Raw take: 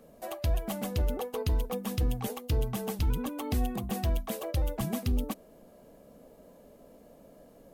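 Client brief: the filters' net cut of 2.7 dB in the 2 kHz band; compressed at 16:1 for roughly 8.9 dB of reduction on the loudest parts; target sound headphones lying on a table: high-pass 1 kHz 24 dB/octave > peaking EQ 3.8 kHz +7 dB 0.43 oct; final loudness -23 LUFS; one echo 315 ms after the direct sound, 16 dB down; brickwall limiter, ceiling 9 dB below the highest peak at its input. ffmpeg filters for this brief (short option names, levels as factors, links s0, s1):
-af "equalizer=f=2000:t=o:g=-4.5,acompressor=threshold=0.0251:ratio=16,alimiter=level_in=2.11:limit=0.0631:level=0:latency=1,volume=0.473,highpass=f=1000:w=0.5412,highpass=f=1000:w=1.3066,equalizer=f=3800:t=o:w=0.43:g=7,aecho=1:1:315:0.158,volume=20"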